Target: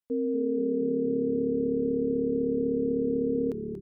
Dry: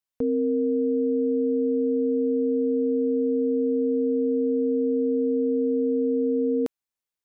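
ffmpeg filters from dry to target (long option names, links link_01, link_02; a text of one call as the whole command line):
ffmpeg -i in.wav -filter_complex "[0:a]atempo=1.9,asplit=9[link_01][link_02][link_03][link_04][link_05][link_06][link_07][link_08][link_09];[link_02]adelay=234,afreqshift=-36,volume=-9dB[link_10];[link_03]adelay=468,afreqshift=-72,volume=-12.9dB[link_11];[link_04]adelay=702,afreqshift=-108,volume=-16.8dB[link_12];[link_05]adelay=936,afreqshift=-144,volume=-20.6dB[link_13];[link_06]adelay=1170,afreqshift=-180,volume=-24.5dB[link_14];[link_07]adelay=1404,afreqshift=-216,volume=-28.4dB[link_15];[link_08]adelay=1638,afreqshift=-252,volume=-32.3dB[link_16];[link_09]adelay=1872,afreqshift=-288,volume=-36.1dB[link_17];[link_01][link_10][link_11][link_12][link_13][link_14][link_15][link_16][link_17]amix=inputs=9:normalize=0,volume=-4.5dB" out.wav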